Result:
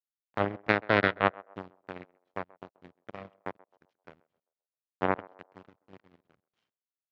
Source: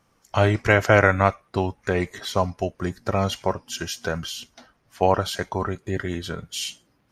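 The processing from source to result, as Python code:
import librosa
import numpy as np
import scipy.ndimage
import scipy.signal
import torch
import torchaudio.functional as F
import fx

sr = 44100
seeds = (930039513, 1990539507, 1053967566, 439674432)

p1 = fx.delta_hold(x, sr, step_db=-24.0)
p2 = fx.env_lowpass_down(p1, sr, base_hz=2300.0, full_db=-15.5)
p3 = fx.low_shelf(p2, sr, hz=270.0, db=5.5)
p4 = fx.power_curve(p3, sr, exponent=3.0)
p5 = np.sign(p4) * np.maximum(np.abs(p4) - 10.0 ** (-34.5 / 20.0), 0.0)
p6 = p4 + F.gain(torch.from_numpy(p5), -10.5).numpy()
p7 = fx.bandpass_edges(p6, sr, low_hz=130.0, high_hz=3000.0)
p8 = p7 + fx.echo_banded(p7, sr, ms=131, feedback_pct=40, hz=680.0, wet_db=-20.5, dry=0)
y = F.gain(torch.from_numpy(p8), -2.0).numpy()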